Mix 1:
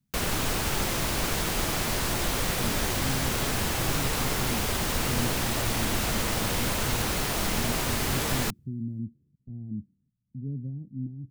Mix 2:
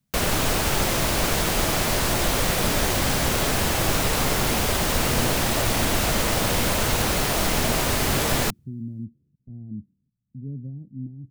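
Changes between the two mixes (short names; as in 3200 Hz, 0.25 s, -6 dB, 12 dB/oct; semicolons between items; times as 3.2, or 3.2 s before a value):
background +5.0 dB; master: add bell 610 Hz +3.5 dB 0.59 oct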